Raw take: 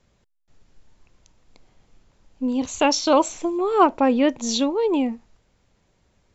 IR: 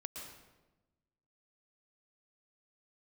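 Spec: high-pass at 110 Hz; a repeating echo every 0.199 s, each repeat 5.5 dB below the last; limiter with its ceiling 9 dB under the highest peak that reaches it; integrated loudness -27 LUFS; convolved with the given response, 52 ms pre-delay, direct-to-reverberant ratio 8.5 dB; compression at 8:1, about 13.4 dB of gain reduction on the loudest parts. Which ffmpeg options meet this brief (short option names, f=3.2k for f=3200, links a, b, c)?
-filter_complex "[0:a]highpass=110,acompressor=threshold=-25dB:ratio=8,alimiter=limit=-21.5dB:level=0:latency=1,aecho=1:1:199|398|597|796|995|1194|1393:0.531|0.281|0.149|0.079|0.0419|0.0222|0.0118,asplit=2[a][b];[1:a]atrim=start_sample=2205,adelay=52[c];[b][c]afir=irnorm=-1:irlink=0,volume=-6dB[d];[a][d]amix=inputs=2:normalize=0,volume=1.5dB"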